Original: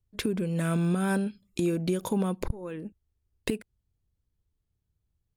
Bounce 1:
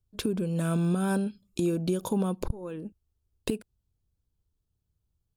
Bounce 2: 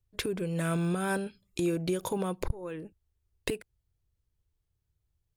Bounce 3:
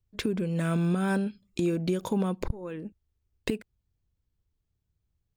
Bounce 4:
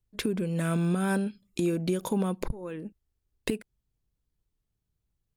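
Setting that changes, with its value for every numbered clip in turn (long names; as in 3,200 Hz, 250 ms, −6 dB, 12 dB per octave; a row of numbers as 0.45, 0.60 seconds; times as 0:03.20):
parametric band, centre frequency: 2,000, 220, 11,000, 83 Hertz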